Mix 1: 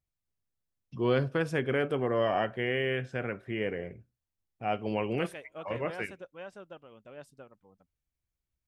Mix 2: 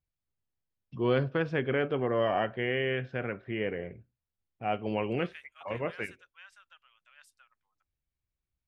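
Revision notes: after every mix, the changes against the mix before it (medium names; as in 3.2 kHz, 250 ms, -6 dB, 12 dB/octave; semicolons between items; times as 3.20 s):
first voice: add low-pass 4.2 kHz 24 dB/octave; second voice: add high-pass 1.4 kHz 24 dB/octave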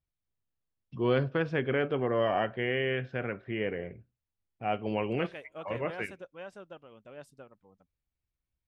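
second voice: remove high-pass 1.4 kHz 24 dB/octave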